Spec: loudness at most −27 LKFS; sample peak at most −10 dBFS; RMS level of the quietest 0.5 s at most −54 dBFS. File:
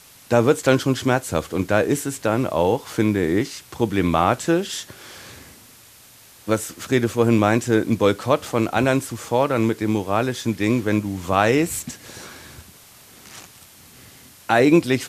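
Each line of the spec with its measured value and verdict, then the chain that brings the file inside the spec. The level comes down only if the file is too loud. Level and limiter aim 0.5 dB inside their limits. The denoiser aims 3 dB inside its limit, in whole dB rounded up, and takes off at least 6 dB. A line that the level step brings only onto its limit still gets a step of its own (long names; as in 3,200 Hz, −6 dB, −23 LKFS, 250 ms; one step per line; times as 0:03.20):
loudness −20.5 LKFS: out of spec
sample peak −3.5 dBFS: out of spec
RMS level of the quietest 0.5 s −48 dBFS: out of spec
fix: level −7 dB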